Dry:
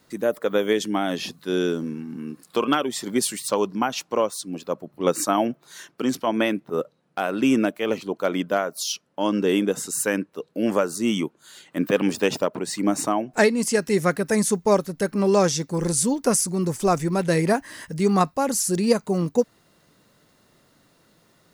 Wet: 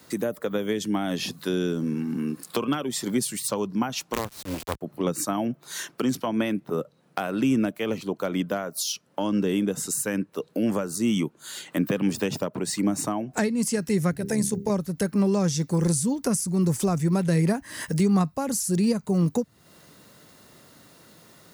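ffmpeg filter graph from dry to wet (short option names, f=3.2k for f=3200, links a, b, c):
-filter_complex "[0:a]asettb=1/sr,asplit=3[a][b][c];[a]atrim=end=4.134[d];[b]atrim=start=4.13:end=4.81,asetpts=PTS-STARTPTS,afade=t=in:d=0.004:c=qsin,afade=t=out:st=0.676:d=0.004:c=qsin,lowpass=4.1k,equalizer=f=540:t=o:w=0.37:g=-6.5,acrusher=bits=4:dc=4:mix=0:aa=0.000001[e];[c]atrim=start=4.806[f];[d][e]acrossfade=d=0.004:c1=hsin:c2=qsin[g];[g][f]acrossfade=d=0.004:c1=qsin:c2=hsin,asettb=1/sr,asplit=3[h][i][j];[h]atrim=end=14.114[k];[i]atrim=start=14.11:end=14.7,asetpts=PTS-STARTPTS,afade=t=in:d=0.004:c=qsin,afade=t=out:st=0.586:d=0.004:c=qsin,equalizer=f=1.2k:t=o:w=0.38:g=-12,bandreject=f=50:t=h:w=6,bandreject=f=100:t=h:w=6,bandreject=f=150:t=h:w=6,bandreject=f=200:t=h:w=6,bandreject=f=250:t=h:w=6,bandreject=f=300:t=h:w=6,bandreject=f=350:t=h:w=6,bandreject=f=400:t=h:w=6,tremolo=f=73:d=0.519[l];[j]atrim=start=14.696[m];[k][l]acrossfade=d=0.004:c1=hsin:c2=qsin[n];[n][m]acrossfade=d=0.004:c1=qsin:c2=hsin,highshelf=f=7.1k:g=5.5,acrossover=split=180[o][p];[p]acompressor=threshold=-33dB:ratio=6[q];[o][q]amix=inputs=2:normalize=0,highpass=48,volume=6.5dB"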